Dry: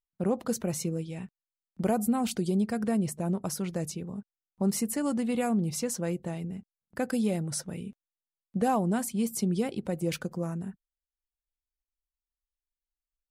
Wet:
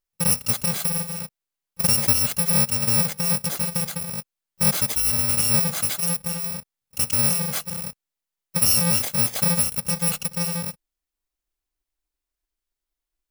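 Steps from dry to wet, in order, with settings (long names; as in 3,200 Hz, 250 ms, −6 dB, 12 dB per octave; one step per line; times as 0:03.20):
samples in bit-reversed order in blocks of 128 samples
level +7 dB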